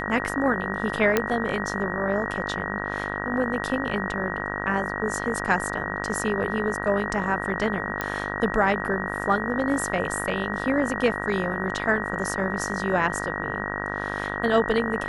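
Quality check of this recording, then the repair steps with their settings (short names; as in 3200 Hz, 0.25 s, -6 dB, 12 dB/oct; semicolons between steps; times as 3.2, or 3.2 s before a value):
buzz 50 Hz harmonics 36 -31 dBFS
tone 1900 Hz -33 dBFS
1.17 pop -6 dBFS
8.01 pop -12 dBFS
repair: de-click; notch 1900 Hz, Q 30; de-hum 50 Hz, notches 36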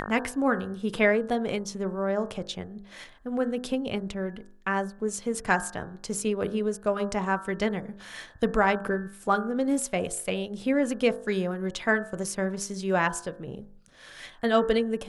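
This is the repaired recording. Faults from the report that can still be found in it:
none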